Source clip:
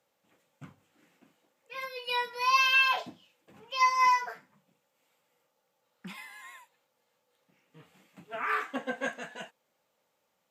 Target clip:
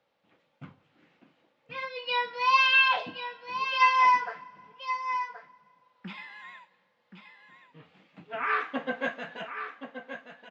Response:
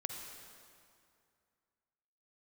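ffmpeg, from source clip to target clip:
-filter_complex "[0:a]lowpass=f=4400:w=0.5412,lowpass=f=4400:w=1.3066,aecho=1:1:1076:0.335,asplit=2[s0][s1];[1:a]atrim=start_sample=2205[s2];[s1][s2]afir=irnorm=-1:irlink=0,volume=0.15[s3];[s0][s3]amix=inputs=2:normalize=0,volume=1.19"

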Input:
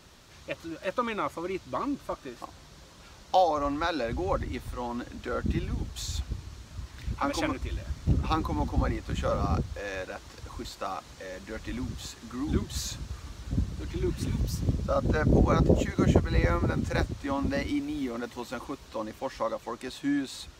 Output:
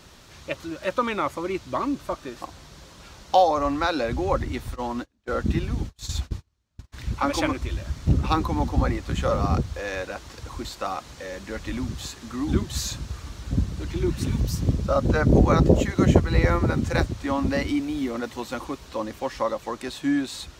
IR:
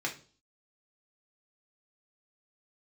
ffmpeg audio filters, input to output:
-filter_complex "[0:a]asplit=3[s0][s1][s2];[s0]afade=t=out:st=4.74:d=0.02[s3];[s1]agate=range=0.0178:threshold=0.02:ratio=16:detection=peak,afade=t=in:st=4.74:d=0.02,afade=t=out:st=6.92:d=0.02[s4];[s2]afade=t=in:st=6.92:d=0.02[s5];[s3][s4][s5]amix=inputs=3:normalize=0,volume=1.78"

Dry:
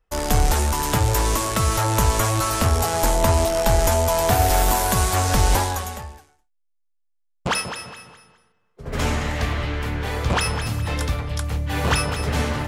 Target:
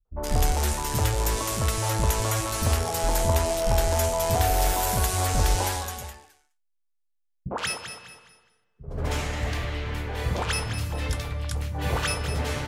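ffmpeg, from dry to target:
-filter_complex "[0:a]acrossover=split=220|1200[s0][s1][s2];[s1]adelay=50[s3];[s2]adelay=120[s4];[s0][s3][s4]amix=inputs=3:normalize=0,aeval=exprs='0.596*(cos(1*acos(clip(val(0)/0.596,-1,1)))-cos(1*PI/2))+0.00376*(cos(3*acos(clip(val(0)/0.596,-1,1)))-cos(3*PI/2))':c=same,volume=0.631"

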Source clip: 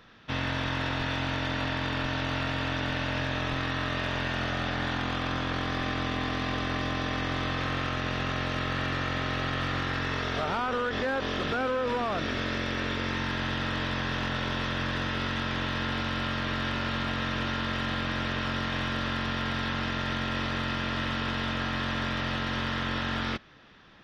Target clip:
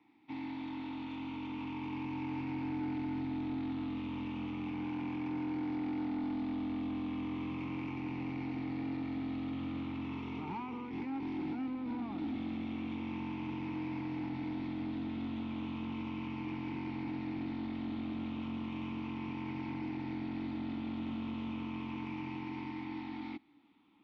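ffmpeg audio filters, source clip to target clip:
-filter_complex "[0:a]afftfilt=real='re*pow(10,6/40*sin(2*PI*(0.76*log(max(b,1)*sr/1024/100)/log(2)-(-0.35)*(pts-256)/sr)))':imag='im*pow(10,6/40*sin(2*PI*(0.76*log(max(b,1)*sr/1024/100)/log(2)-(-0.35)*(pts-256)/sr)))':win_size=1024:overlap=0.75,adynamicequalizer=threshold=0.00158:dfrequency=4300:dqfactor=7.3:tfrequency=4300:tqfactor=7.3:attack=5:release=100:ratio=0.375:range=2:mode=boostabove:tftype=bell,acrossover=split=220|790|3700[s0][s1][s2][s3];[s0]dynaudnorm=f=170:g=21:m=5.01[s4];[s4][s1][s2][s3]amix=inputs=4:normalize=0,asplit=3[s5][s6][s7];[s5]bandpass=f=300:t=q:w=8,volume=1[s8];[s6]bandpass=f=870:t=q:w=8,volume=0.501[s9];[s7]bandpass=f=2240:t=q:w=8,volume=0.355[s10];[s8][s9][s10]amix=inputs=3:normalize=0,asoftclip=type=tanh:threshold=0.0211,volume=1.12"

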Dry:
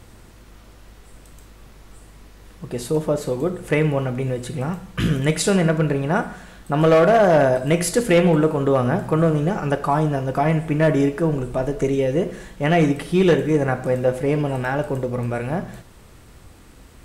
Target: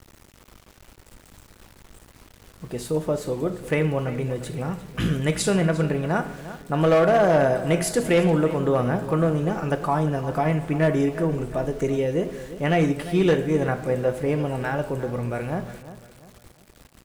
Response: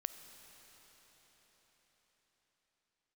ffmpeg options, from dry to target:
-filter_complex "[0:a]aeval=exprs='val(0)*gte(abs(val(0)),0.00841)':c=same,asplit=2[s0][s1];[s1]adelay=350,lowpass=f=4400:p=1,volume=0.2,asplit=2[s2][s3];[s3]adelay=350,lowpass=f=4400:p=1,volume=0.37,asplit=2[s4][s5];[s5]adelay=350,lowpass=f=4400:p=1,volume=0.37,asplit=2[s6][s7];[s7]adelay=350,lowpass=f=4400:p=1,volume=0.37[s8];[s0][s2][s4][s6][s8]amix=inputs=5:normalize=0,volume=0.668"

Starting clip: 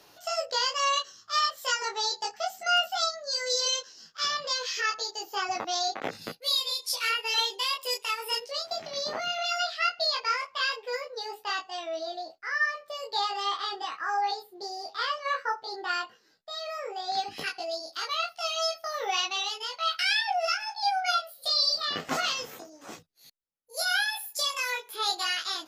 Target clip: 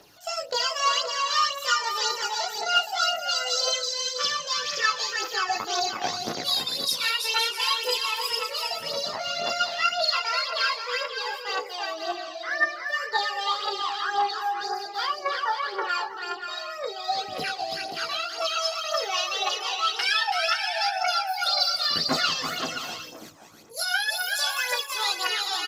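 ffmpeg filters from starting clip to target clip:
-filter_complex "[0:a]asettb=1/sr,asplit=3[s0][s1][s2];[s0]atrim=end=15.074[s3];[s1]atrim=start=15.07:end=15.89,asetpts=PTS-STARTPTS,afade=t=in:d=0.004:c=qsin,afade=t=out:st=0.816:d=0.004:c=qsin,acrossover=split=3800[s4][s5];[s5]acompressor=threshold=0.00224:ratio=4:attack=1:release=60[s6];[s4][s6]amix=inputs=2:normalize=0[s7];[s2]atrim=start=15.886[s8];[s3][s7]acrossfade=d=0.004:c1=hsin:c2=qsin[s9];[s9][s8]acrossfade=d=0.004:c1=qsin:c2=hsin,asplit=2[s10][s11];[s11]aecho=0:1:330|528|646.8|718.1|760.8:0.631|0.398|0.251|0.158|0.1[s12];[s10][s12]amix=inputs=2:normalize=0,aphaser=in_gain=1:out_gain=1:delay=1.3:decay=0.53:speed=1.9:type=triangular"

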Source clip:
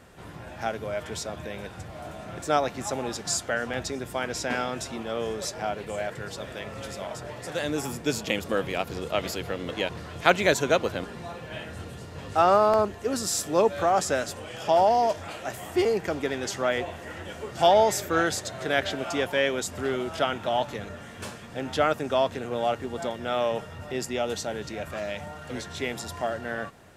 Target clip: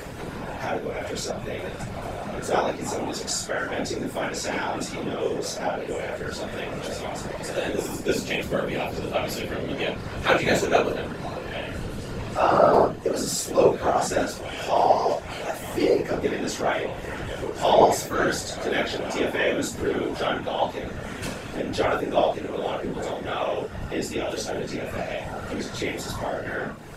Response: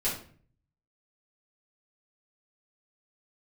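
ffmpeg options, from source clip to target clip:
-filter_complex "[1:a]atrim=start_sample=2205,atrim=end_sample=3969[s0];[0:a][s0]afir=irnorm=-1:irlink=0,afftfilt=real='hypot(re,im)*cos(2*PI*random(0))':imag='hypot(re,im)*sin(2*PI*random(1))':win_size=512:overlap=0.75,bandreject=f=76.06:t=h:w=4,bandreject=f=152.12:t=h:w=4,bandreject=f=228.18:t=h:w=4,acompressor=mode=upward:threshold=0.0631:ratio=2.5"

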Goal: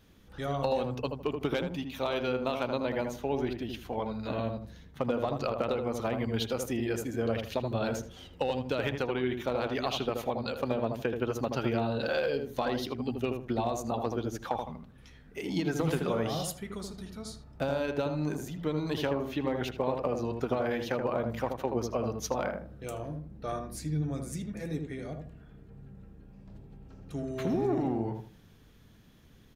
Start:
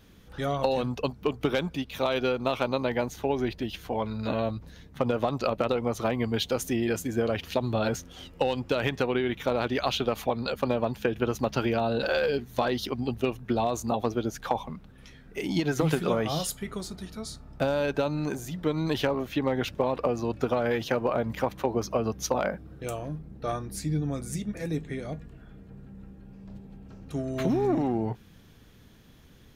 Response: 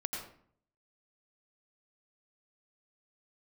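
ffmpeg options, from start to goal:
-filter_complex "[0:a]asplit=2[s0][s1];[s1]adelay=79,lowpass=f=1200:p=1,volume=0.631,asplit=2[s2][s3];[s3]adelay=79,lowpass=f=1200:p=1,volume=0.29,asplit=2[s4][s5];[s5]adelay=79,lowpass=f=1200:p=1,volume=0.29,asplit=2[s6][s7];[s7]adelay=79,lowpass=f=1200:p=1,volume=0.29[s8];[s0][s2][s4][s6][s8]amix=inputs=5:normalize=0,volume=0.562"

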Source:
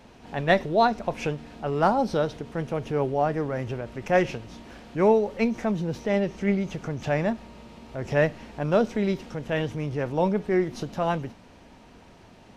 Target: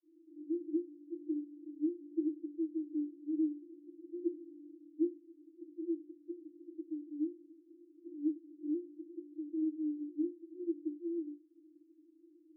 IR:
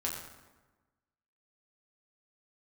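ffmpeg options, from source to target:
-af "asuperpass=centerf=320:order=20:qfactor=5.4,volume=1.19"

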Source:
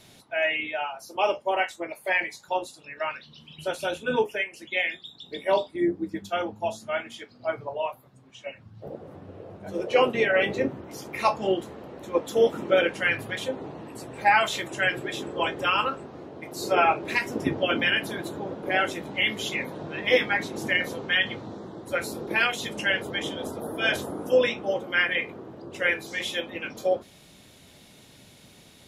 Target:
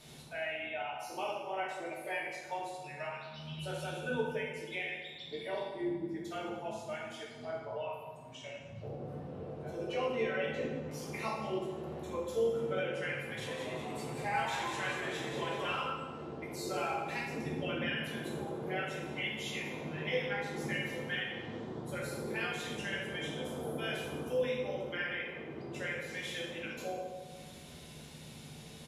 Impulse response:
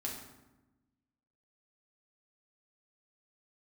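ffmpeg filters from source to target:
-filter_complex "[0:a]acompressor=threshold=0.00562:ratio=2,asplit=3[s0][s1][s2];[s0]afade=t=out:st=13.46:d=0.02[s3];[s1]asplit=9[s4][s5][s6][s7][s8][s9][s10][s11][s12];[s5]adelay=189,afreqshift=110,volume=0.501[s13];[s6]adelay=378,afreqshift=220,volume=0.295[s14];[s7]adelay=567,afreqshift=330,volume=0.174[s15];[s8]adelay=756,afreqshift=440,volume=0.104[s16];[s9]adelay=945,afreqshift=550,volume=0.061[s17];[s10]adelay=1134,afreqshift=660,volume=0.0359[s18];[s11]adelay=1323,afreqshift=770,volume=0.0211[s19];[s12]adelay=1512,afreqshift=880,volume=0.0124[s20];[s4][s13][s14][s15][s16][s17][s18][s19][s20]amix=inputs=9:normalize=0,afade=t=in:st=13.46:d=0.02,afade=t=out:st=15.79:d=0.02[s21];[s2]afade=t=in:st=15.79:d=0.02[s22];[s3][s21][s22]amix=inputs=3:normalize=0[s23];[1:a]atrim=start_sample=2205,asetrate=25578,aresample=44100[s24];[s23][s24]afir=irnorm=-1:irlink=0,volume=0.668"

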